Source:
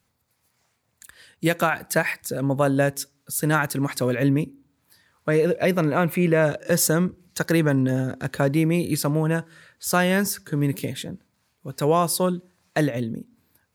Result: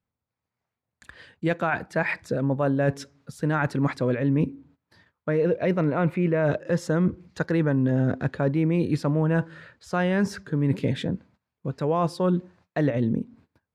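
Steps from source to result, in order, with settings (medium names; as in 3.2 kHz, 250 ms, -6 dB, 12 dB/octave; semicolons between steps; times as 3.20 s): gate -59 dBFS, range -20 dB; reverse; compression, threshold -27 dBFS, peak gain reduction 12 dB; reverse; tape spacing loss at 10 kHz 26 dB; trim +8 dB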